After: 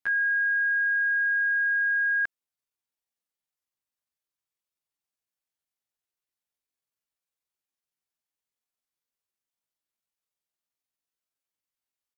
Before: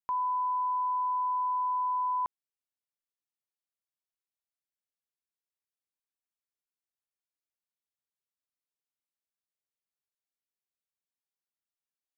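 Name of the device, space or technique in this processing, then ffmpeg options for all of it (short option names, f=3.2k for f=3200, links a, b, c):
chipmunk voice: -af "asetrate=72056,aresample=44100,atempo=0.612027,volume=5dB"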